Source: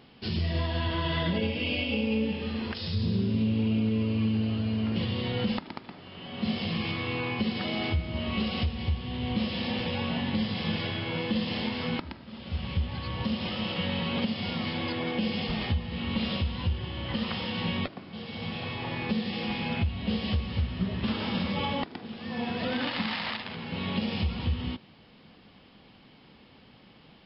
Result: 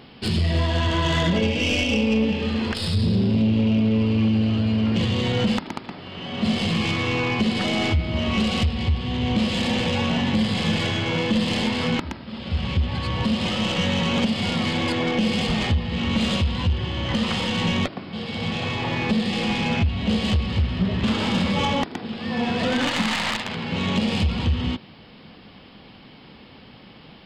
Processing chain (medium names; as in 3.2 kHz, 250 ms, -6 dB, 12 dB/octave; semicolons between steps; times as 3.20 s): tracing distortion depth 0.054 ms; saturation -22 dBFS, distortion -19 dB; trim +9 dB